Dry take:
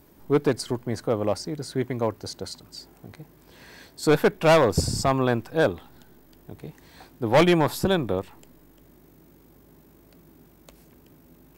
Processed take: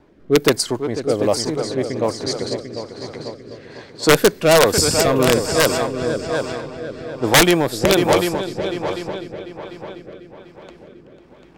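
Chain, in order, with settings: tone controls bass -6 dB, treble +5 dB; multi-head delay 248 ms, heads second and third, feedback 51%, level -8.5 dB; rotary cabinet horn 1.2 Hz; integer overflow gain 12.5 dB; level-controlled noise filter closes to 2.4 kHz, open at -21.5 dBFS; trim +8.5 dB

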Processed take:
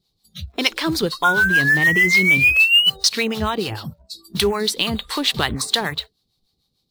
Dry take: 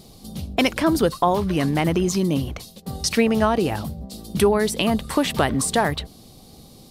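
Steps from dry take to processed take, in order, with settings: painted sound rise, 1.24–2.90 s, 1.4–3 kHz -17 dBFS; fifteen-band graphic EQ 250 Hz -6 dB, 630 Hz -8 dB, 4 kHz +11 dB, 10 kHz -4 dB; in parallel at -4 dB: companded quantiser 4-bit; on the sum: spectral noise reduction 26 dB; harmonic tremolo 6.7 Hz, depth 70%, crossover 580 Hz; trim -1 dB

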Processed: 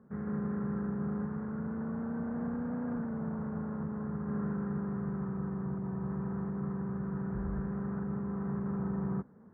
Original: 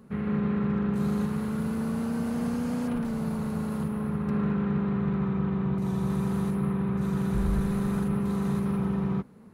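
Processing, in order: high-pass 52 Hz; gain riding 2 s; elliptic low-pass 1.7 kHz, stop band 80 dB; trim -7 dB

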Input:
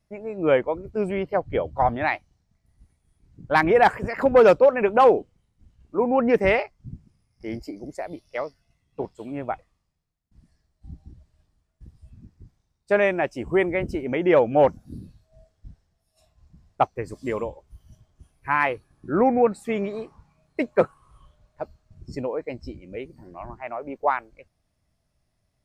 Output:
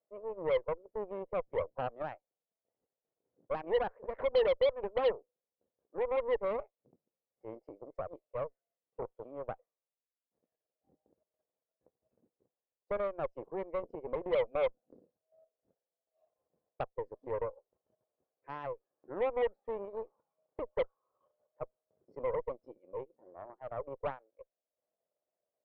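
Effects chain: transient shaper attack -5 dB, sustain -9 dB; compression 2.5:1, threshold -29 dBFS, peak gain reduction 11.5 dB; ladder band-pass 560 Hz, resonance 65%; Chebyshev shaper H 8 -19 dB, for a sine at -21 dBFS; trim +1.5 dB

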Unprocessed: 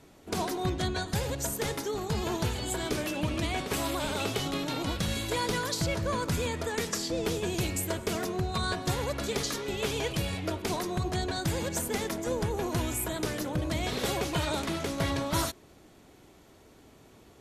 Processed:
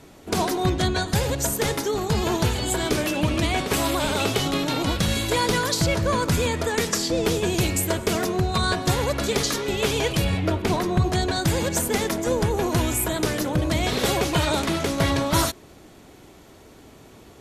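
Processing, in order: 10.24–11.04 s: tone controls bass +4 dB, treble -7 dB; trim +8 dB

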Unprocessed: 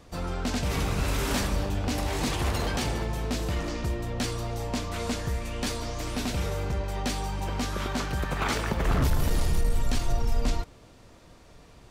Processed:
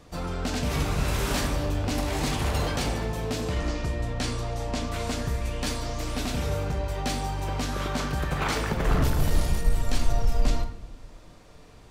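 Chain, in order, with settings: 3.41–4.87 s: low-pass 10 kHz 12 dB/octave; simulated room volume 210 m³, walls mixed, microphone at 0.46 m

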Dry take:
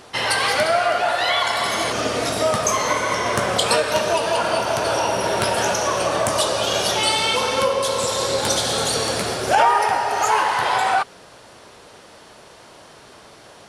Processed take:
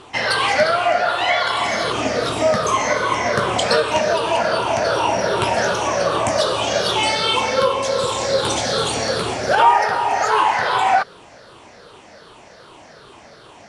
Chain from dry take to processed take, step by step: drifting ripple filter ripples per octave 0.64, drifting -2.6 Hz, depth 9 dB; low-pass 10 kHz 24 dB/octave; treble shelf 7.6 kHz -11 dB; trim +1 dB

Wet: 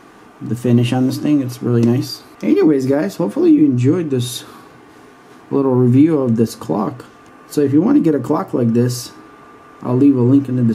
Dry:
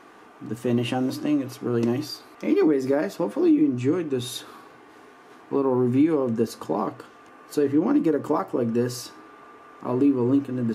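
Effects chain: tone controls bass +10 dB, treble +4 dB; trim +5 dB

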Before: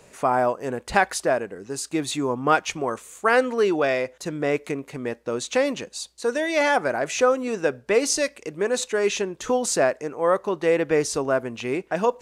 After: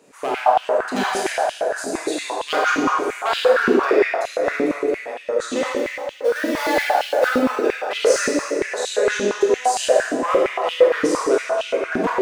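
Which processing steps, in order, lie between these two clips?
5.71–7.28 s: dead-time distortion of 0.15 ms; reverb removal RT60 1.1 s; wavefolder -14.5 dBFS; reverberation RT60 3.3 s, pre-delay 18 ms, DRR -6.5 dB; step-sequenced high-pass 8.7 Hz 260–3000 Hz; trim -5.5 dB

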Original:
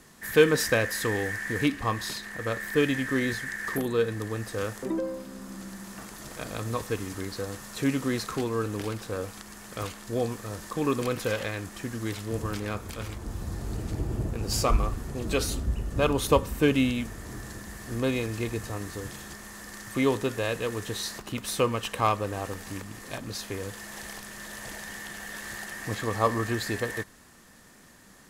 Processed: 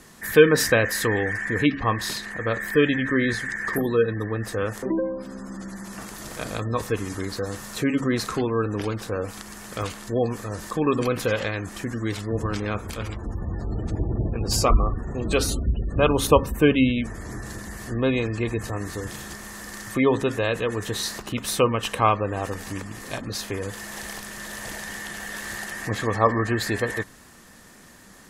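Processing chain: de-hum 136.9 Hz, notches 2; spectral gate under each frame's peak -30 dB strong; trim +5 dB

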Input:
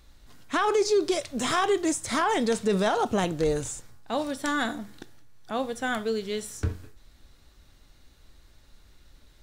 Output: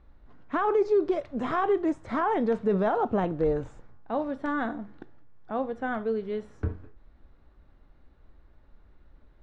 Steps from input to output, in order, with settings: low-pass 1.3 kHz 12 dB/octave; peaking EQ 110 Hz -3.5 dB 0.77 oct

